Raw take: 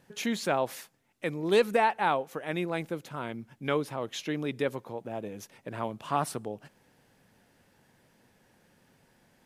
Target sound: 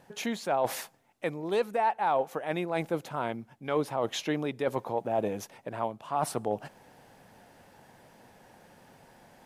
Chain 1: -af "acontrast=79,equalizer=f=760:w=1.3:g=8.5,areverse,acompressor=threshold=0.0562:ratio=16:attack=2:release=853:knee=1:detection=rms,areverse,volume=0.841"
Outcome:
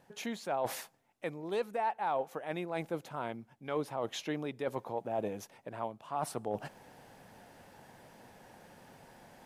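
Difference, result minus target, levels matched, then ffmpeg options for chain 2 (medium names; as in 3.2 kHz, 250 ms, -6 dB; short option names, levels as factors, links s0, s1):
compression: peak gain reduction +6 dB
-af "acontrast=79,equalizer=f=760:w=1.3:g=8.5,areverse,acompressor=threshold=0.119:ratio=16:attack=2:release=853:knee=1:detection=rms,areverse,volume=0.841"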